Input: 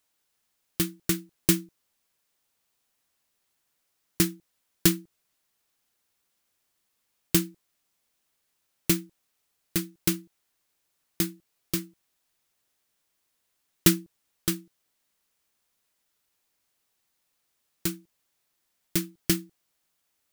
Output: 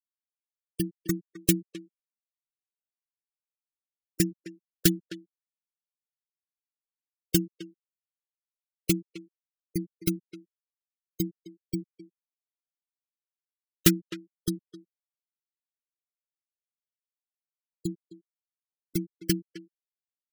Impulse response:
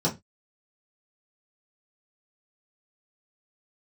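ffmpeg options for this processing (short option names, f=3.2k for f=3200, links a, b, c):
-filter_complex "[0:a]afftfilt=real='re*gte(hypot(re,im),0.0708)':imag='im*gte(hypot(re,im),0.0708)':win_size=1024:overlap=0.75,asplit=2[a][b];[b]adelay=260,highpass=300,lowpass=3.4k,asoftclip=type=hard:threshold=-10.5dB,volume=-13dB[c];[a][c]amix=inputs=2:normalize=0"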